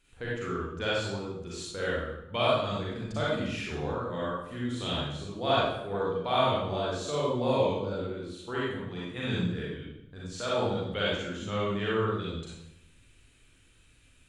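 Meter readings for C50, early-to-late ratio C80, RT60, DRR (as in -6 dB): -3.0 dB, 2.0 dB, 0.85 s, -7.5 dB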